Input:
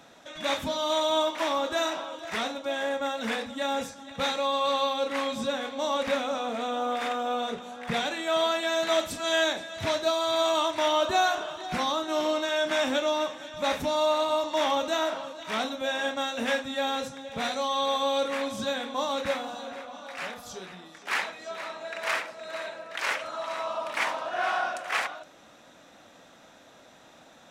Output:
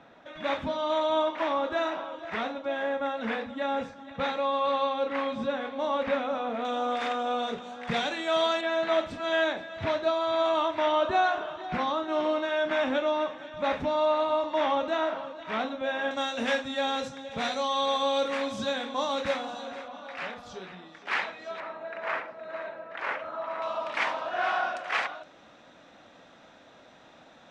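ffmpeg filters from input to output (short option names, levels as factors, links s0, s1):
-af "asetnsamples=n=441:p=0,asendcmd='6.65 lowpass f 5600;8.61 lowpass f 2500;16.11 lowpass f 6200;19.88 lowpass f 3600;21.6 lowpass f 1700;23.62 lowpass f 4300',lowpass=2400"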